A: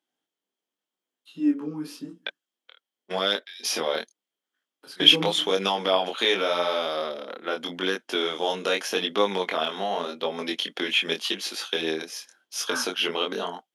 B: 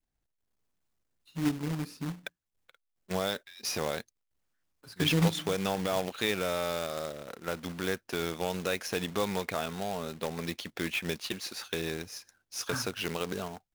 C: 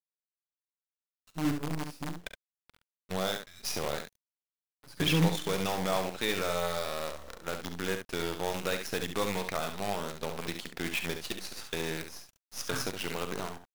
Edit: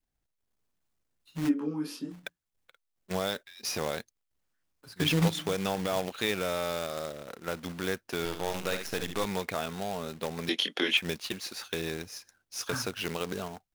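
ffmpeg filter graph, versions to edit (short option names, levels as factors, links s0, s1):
-filter_complex "[0:a]asplit=2[s0][s1];[1:a]asplit=4[s2][s3][s4][s5];[s2]atrim=end=1.51[s6];[s0]atrim=start=1.45:end=2.16[s7];[s3]atrim=start=2.1:end=8.252[s8];[2:a]atrim=start=8.248:end=9.252[s9];[s4]atrim=start=9.248:end=10.492[s10];[s1]atrim=start=10.488:end=10.972[s11];[s5]atrim=start=10.968[s12];[s6][s7]acrossfade=d=0.06:c1=tri:c2=tri[s13];[s13][s8]acrossfade=d=0.06:c1=tri:c2=tri[s14];[s14][s9]acrossfade=d=0.004:c1=hsin:c2=hsin[s15];[s15][s10]acrossfade=d=0.004:c1=hsin:c2=hsin[s16];[s16][s11]acrossfade=d=0.004:c1=hsin:c2=hsin[s17];[s17][s12]acrossfade=d=0.004:c1=hsin:c2=hsin"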